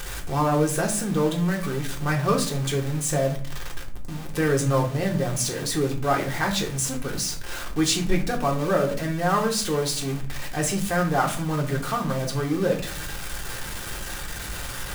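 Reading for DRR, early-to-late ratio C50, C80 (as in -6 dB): -0.5 dB, 10.5 dB, 15.5 dB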